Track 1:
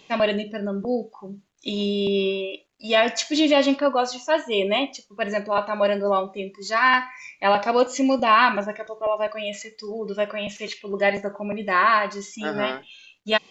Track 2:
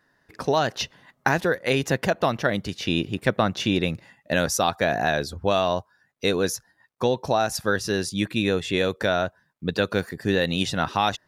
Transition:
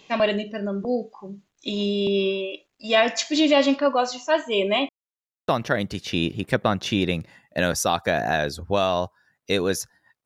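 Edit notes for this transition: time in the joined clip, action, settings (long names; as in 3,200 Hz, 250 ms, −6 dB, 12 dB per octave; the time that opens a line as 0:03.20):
track 1
0:04.89–0:05.48: silence
0:05.48: continue with track 2 from 0:02.22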